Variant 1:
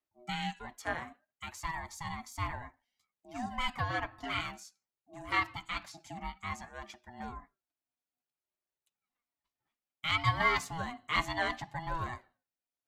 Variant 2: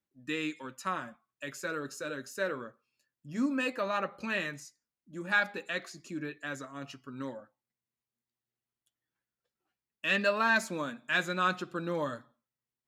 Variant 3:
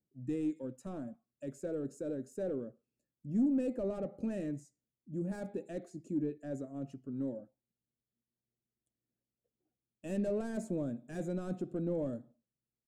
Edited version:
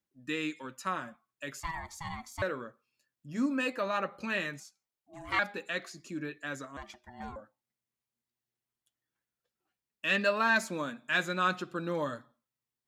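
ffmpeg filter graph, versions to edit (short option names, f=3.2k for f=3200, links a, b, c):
-filter_complex "[0:a]asplit=3[a][b][c];[1:a]asplit=4[d][e][f][g];[d]atrim=end=1.602[h];[a]atrim=start=1.598:end=2.422[i];[e]atrim=start=2.418:end=4.602[j];[b]atrim=start=4.598:end=5.392[k];[f]atrim=start=5.388:end=6.772[l];[c]atrim=start=6.768:end=7.362[m];[g]atrim=start=7.358[n];[h][i]acrossfade=d=0.004:c1=hsin:c2=hsin[o];[o][j]acrossfade=d=0.004:c1=hsin:c2=hsin[p];[p][k]acrossfade=d=0.004:c1=hsin:c2=hsin[q];[q][l]acrossfade=d=0.004:c1=hsin:c2=hsin[r];[r][m]acrossfade=d=0.004:c1=hsin:c2=hsin[s];[s][n]acrossfade=d=0.004:c1=hsin:c2=hsin"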